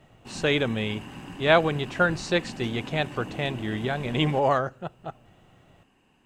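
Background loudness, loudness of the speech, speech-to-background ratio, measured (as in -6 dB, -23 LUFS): -40.5 LUFS, -26.0 LUFS, 14.5 dB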